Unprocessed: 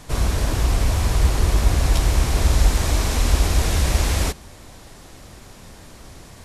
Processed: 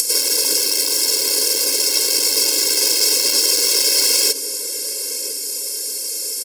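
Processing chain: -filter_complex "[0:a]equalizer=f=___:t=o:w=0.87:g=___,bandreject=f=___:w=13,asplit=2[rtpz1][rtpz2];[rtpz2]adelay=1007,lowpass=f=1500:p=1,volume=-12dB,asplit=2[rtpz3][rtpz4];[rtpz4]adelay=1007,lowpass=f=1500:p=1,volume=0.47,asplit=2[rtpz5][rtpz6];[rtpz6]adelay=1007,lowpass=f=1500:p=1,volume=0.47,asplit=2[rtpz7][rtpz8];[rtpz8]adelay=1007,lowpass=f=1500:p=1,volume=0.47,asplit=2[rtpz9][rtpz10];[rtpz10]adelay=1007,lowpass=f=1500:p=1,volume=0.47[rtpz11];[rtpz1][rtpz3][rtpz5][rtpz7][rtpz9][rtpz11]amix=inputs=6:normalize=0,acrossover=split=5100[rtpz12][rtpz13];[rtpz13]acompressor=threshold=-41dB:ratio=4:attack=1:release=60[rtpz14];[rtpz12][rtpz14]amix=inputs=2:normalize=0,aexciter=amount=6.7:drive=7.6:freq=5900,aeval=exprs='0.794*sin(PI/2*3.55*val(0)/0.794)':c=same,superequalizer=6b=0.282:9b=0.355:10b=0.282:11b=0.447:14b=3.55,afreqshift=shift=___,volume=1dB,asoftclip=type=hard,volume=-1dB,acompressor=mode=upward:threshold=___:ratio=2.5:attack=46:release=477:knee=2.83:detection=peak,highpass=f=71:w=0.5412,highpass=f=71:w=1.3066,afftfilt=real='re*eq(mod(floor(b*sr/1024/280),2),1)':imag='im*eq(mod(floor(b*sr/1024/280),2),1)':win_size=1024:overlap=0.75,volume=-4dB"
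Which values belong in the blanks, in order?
790, -9.5, 5800, 17, -13dB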